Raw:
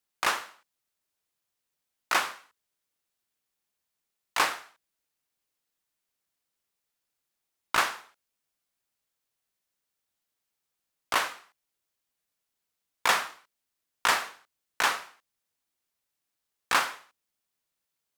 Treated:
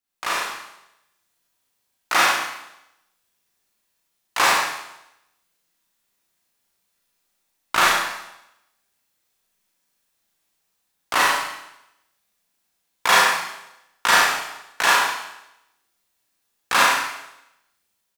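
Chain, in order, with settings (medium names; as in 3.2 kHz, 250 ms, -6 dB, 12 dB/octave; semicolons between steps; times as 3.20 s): level rider gain up to 8.5 dB; doubling 35 ms -3.5 dB; Schroeder reverb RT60 0.85 s, combs from 32 ms, DRR -4.5 dB; trim -4.5 dB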